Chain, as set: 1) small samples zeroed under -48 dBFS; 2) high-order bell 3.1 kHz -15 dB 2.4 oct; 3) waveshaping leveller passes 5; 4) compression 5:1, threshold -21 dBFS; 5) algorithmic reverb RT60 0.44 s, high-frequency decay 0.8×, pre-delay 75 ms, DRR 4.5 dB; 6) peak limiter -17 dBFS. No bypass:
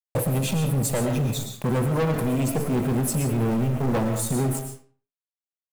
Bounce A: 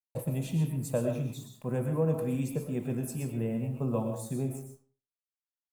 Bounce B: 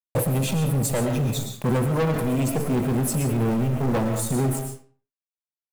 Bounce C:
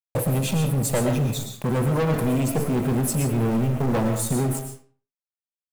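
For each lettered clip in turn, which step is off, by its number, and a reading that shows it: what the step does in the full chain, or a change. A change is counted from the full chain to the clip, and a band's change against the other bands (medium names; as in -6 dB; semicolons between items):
3, crest factor change +8.0 dB; 4, mean gain reduction 2.5 dB; 6, crest factor change +3.0 dB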